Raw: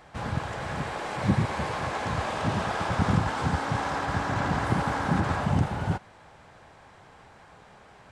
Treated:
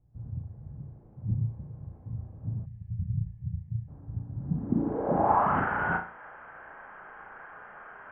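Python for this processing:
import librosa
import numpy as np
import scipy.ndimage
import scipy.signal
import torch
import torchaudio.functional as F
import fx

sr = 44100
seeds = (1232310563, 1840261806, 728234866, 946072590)

y = fx.filter_sweep_lowpass(x, sr, from_hz=110.0, to_hz=1500.0, start_s=4.34, end_s=5.57, q=3.7)
y = fx.brickwall_lowpass(y, sr, high_hz=3300.0)
y = fx.peak_eq(y, sr, hz=96.0, db=-13.5, octaves=2.0)
y = fx.room_flutter(y, sr, wall_m=6.0, rt60_s=0.35)
y = fx.spec_box(y, sr, start_s=2.65, length_s=1.23, low_hz=210.0, high_hz=1700.0, gain_db=-22)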